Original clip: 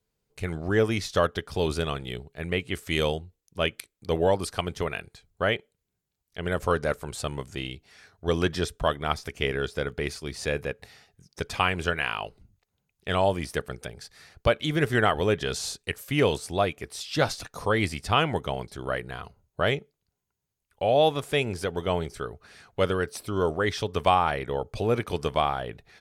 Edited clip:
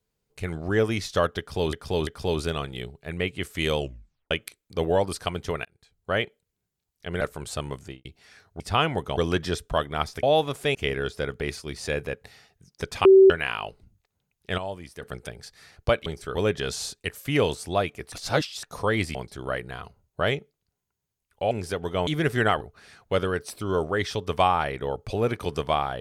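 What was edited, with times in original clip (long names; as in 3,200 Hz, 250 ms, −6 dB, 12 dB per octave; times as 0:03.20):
0:01.39–0:01.73: repeat, 3 plays
0:03.10: tape stop 0.53 s
0:04.97–0:05.50: fade in
0:06.53–0:06.88: remove
0:07.47–0:07.72: fade out and dull
0:11.63–0:11.88: beep over 384 Hz −9 dBFS
0:13.16–0:13.60: clip gain −10.5 dB
0:14.64–0:15.18: swap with 0:21.99–0:22.28
0:16.95–0:17.46: reverse
0:17.98–0:18.55: move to 0:08.27
0:20.91–0:21.43: move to 0:09.33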